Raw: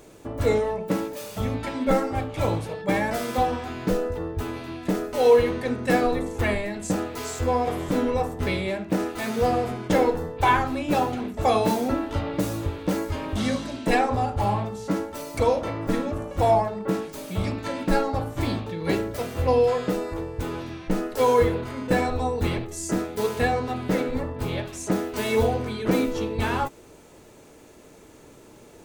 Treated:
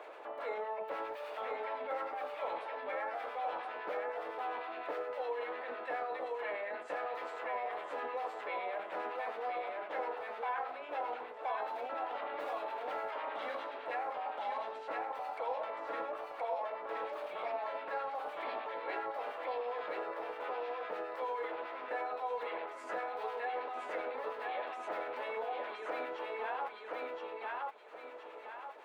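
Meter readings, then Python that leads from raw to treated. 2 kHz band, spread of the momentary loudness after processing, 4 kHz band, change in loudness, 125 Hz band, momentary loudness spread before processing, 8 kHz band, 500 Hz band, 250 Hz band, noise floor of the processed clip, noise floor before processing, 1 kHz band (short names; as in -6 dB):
-10.5 dB, 3 LU, -16.0 dB, -14.5 dB, under -40 dB, 8 LU, under -30 dB, -14.5 dB, -28.5 dB, -48 dBFS, -49 dBFS, -10.0 dB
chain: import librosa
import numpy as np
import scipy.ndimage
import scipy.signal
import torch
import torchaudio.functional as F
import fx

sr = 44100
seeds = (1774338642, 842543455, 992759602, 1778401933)

y = scipy.signal.sosfilt(scipy.signal.butter(4, 610.0, 'highpass', fs=sr, output='sos'), x)
y = fx.transient(y, sr, attack_db=-4, sustain_db=7)
y = fx.rider(y, sr, range_db=5, speed_s=0.5)
y = fx.harmonic_tremolo(y, sr, hz=9.8, depth_pct=50, crossover_hz=1200.0)
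y = fx.air_absorb(y, sr, metres=500.0)
y = fx.echo_feedback(y, sr, ms=1021, feedback_pct=16, wet_db=-3.5)
y = fx.band_squash(y, sr, depth_pct=70)
y = F.gain(torch.from_numpy(y), -6.0).numpy()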